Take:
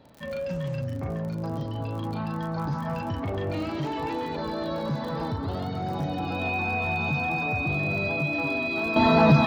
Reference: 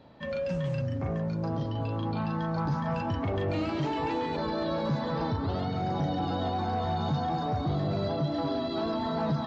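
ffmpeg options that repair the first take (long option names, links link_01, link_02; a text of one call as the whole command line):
ffmpeg -i in.wav -af "adeclick=threshold=4,bandreject=frequency=2500:width=30,asetnsamples=nb_out_samples=441:pad=0,asendcmd='8.96 volume volume -11.5dB',volume=0dB" out.wav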